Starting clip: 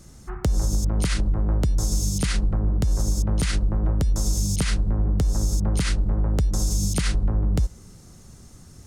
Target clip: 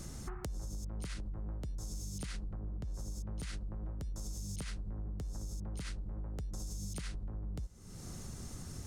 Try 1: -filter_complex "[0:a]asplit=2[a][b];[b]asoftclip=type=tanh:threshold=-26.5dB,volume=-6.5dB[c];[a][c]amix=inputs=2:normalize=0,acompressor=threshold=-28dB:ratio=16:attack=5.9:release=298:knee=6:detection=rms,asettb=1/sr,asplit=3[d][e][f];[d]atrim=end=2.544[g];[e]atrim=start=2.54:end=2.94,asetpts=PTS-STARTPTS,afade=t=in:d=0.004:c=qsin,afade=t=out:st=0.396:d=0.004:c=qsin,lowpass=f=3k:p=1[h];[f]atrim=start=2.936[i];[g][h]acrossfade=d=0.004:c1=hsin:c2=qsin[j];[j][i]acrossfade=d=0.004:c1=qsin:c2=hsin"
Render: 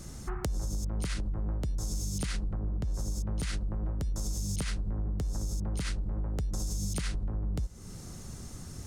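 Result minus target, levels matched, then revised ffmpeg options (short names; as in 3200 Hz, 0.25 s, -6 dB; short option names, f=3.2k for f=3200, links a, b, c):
compressor: peak gain reduction -8.5 dB
-filter_complex "[0:a]asplit=2[a][b];[b]asoftclip=type=tanh:threshold=-26.5dB,volume=-6.5dB[c];[a][c]amix=inputs=2:normalize=0,acompressor=threshold=-37dB:ratio=16:attack=5.9:release=298:knee=6:detection=rms,asettb=1/sr,asplit=3[d][e][f];[d]atrim=end=2.544[g];[e]atrim=start=2.54:end=2.94,asetpts=PTS-STARTPTS,afade=t=in:d=0.004:c=qsin,afade=t=out:st=0.396:d=0.004:c=qsin,lowpass=f=3k:p=1[h];[f]atrim=start=2.936[i];[g][h]acrossfade=d=0.004:c1=hsin:c2=qsin[j];[j][i]acrossfade=d=0.004:c1=qsin:c2=hsin"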